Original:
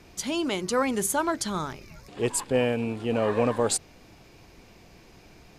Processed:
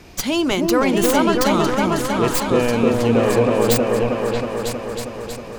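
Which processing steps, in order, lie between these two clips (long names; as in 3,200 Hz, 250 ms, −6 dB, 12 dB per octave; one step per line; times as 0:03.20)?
stylus tracing distortion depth 0.11 ms
brickwall limiter −18 dBFS, peak gain reduction 7 dB
on a send: echo whose low-pass opens from repeat to repeat 318 ms, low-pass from 750 Hz, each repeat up 2 octaves, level 0 dB
on the sum: level +8.5 dB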